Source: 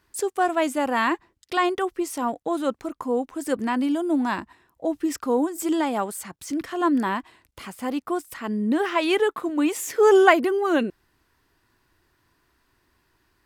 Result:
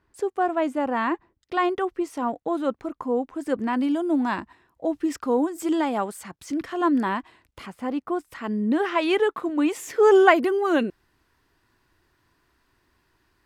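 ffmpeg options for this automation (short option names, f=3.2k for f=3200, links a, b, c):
-af "asetnsamples=n=441:p=0,asendcmd='1.57 lowpass f 2100;3.73 lowpass f 4300;7.66 lowpass f 1700;8.33 lowpass f 3900;10.36 lowpass f 8500',lowpass=f=1.2k:p=1"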